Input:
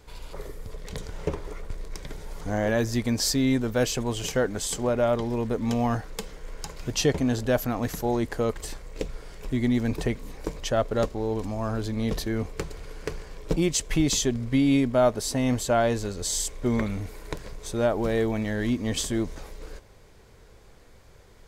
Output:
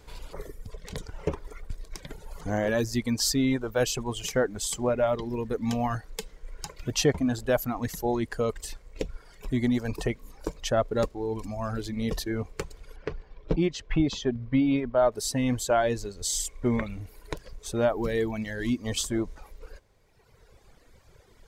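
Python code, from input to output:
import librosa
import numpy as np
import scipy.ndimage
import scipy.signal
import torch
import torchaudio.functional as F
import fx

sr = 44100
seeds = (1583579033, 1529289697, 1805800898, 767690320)

y = fx.dereverb_blind(x, sr, rt60_s=1.9)
y = fx.air_absorb(y, sr, metres=230.0, at=(12.96, 15.12))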